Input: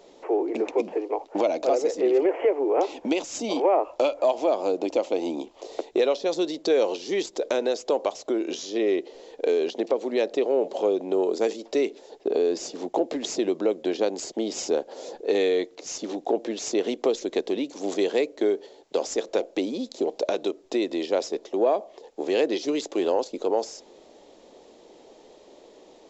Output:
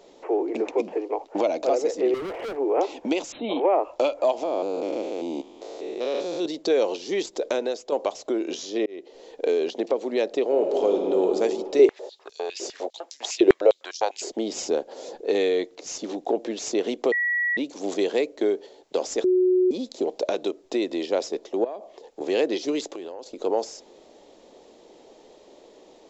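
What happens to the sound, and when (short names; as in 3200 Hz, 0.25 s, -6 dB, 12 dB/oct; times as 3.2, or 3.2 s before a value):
2.14–2.57 overloaded stage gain 30 dB
3.32–3.74 brick-wall FIR low-pass 4200 Hz
4.43–6.46 stepped spectrum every 0.2 s
7.5–7.92 fade out, to -7 dB
8.86–9.26 fade in
10.44–11.27 reverb throw, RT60 2.7 s, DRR 1.5 dB
11.79–14.31 stepped high-pass 9.9 Hz 380–5700 Hz
17.12–17.57 bleep 1930 Hz -21 dBFS
19.24–19.71 bleep 367 Hz -16 dBFS
21.64–22.21 compressor 4:1, threshold -32 dBFS
22.93–23.4 compressor 12:1, threshold -32 dBFS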